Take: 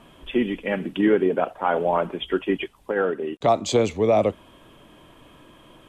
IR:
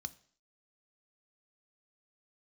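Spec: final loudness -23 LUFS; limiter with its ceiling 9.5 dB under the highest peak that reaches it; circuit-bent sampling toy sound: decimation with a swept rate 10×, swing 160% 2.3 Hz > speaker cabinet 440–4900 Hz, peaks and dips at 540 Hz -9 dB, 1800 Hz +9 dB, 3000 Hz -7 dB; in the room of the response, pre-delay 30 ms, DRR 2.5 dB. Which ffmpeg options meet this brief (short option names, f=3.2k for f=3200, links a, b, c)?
-filter_complex "[0:a]alimiter=limit=-17.5dB:level=0:latency=1,asplit=2[a][b];[1:a]atrim=start_sample=2205,adelay=30[c];[b][c]afir=irnorm=-1:irlink=0,volume=1dB[d];[a][d]amix=inputs=2:normalize=0,acrusher=samples=10:mix=1:aa=0.000001:lfo=1:lforange=16:lforate=2.3,highpass=440,equalizer=f=540:t=q:w=4:g=-9,equalizer=f=1.8k:t=q:w=4:g=9,equalizer=f=3k:t=q:w=4:g=-7,lowpass=f=4.9k:w=0.5412,lowpass=f=4.9k:w=1.3066,volume=7dB"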